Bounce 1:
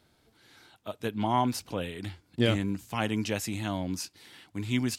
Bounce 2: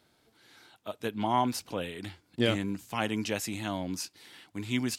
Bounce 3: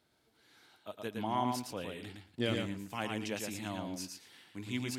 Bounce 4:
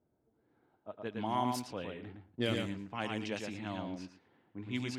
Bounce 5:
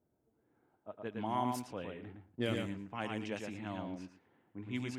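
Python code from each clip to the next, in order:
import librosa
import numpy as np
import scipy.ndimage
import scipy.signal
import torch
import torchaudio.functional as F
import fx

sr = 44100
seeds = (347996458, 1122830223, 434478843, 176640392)

y1 = fx.low_shelf(x, sr, hz=110.0, db=-10.5)
y2 = fx.echo_feedback(y1, sr, ms=113, feedback_pct=15, wet_db=-4)
y2 = y2 * 10.0 ** (-7.0 / 20.0)
y3 = fx.env_lowpass(y2, sr, base_hz=590.0, full_db=-30.0)
y4 = fx.peak_eq(y3, sr, hz=4400.0, db=-7.5, octaves=0.86)
y4 = y4 * 10.0 ** (-1.5 / 20.0)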